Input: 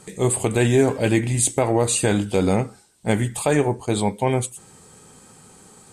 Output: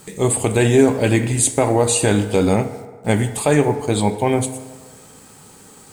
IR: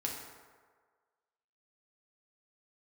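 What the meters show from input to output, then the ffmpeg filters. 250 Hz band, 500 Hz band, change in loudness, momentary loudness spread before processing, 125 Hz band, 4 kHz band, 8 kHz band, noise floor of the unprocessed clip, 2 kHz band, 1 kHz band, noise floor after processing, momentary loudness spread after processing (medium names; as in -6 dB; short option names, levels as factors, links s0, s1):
+3.5 dB, +3.5 dB, +3.5 dB, 6 LU, +3.0 dB, +3.0 dB, +3.0 dB, -50 dBFS, +3.0 dB, +3.5 dB, -45 dBFS, 7 LU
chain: -filter_complex "[0:a]acrusher=bits=7:mix=0:aa=0.5,asplit=2[s0][s1];[1:a]atrim=start_sample=2205[s2];[s1][s2]afir=irnorm=-1:irlink=0,volume=0.473[s3];[s0][s3]amix=inputs=2:normalize=0"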